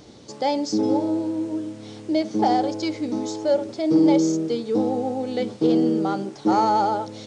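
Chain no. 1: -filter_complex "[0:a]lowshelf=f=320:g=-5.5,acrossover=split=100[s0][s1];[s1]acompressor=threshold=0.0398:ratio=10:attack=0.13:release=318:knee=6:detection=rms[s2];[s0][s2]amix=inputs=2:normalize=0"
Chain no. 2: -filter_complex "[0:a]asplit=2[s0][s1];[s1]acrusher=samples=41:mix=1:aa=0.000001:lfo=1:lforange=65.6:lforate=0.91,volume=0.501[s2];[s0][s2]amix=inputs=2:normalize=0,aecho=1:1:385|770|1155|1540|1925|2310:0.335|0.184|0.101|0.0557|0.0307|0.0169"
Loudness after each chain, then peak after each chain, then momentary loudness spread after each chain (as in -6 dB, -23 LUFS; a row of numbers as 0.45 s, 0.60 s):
-35.5 LUFS, -20.0 LUFS; -25.5 dBFS, -4.5 dBFS; 4 LU, 8 LU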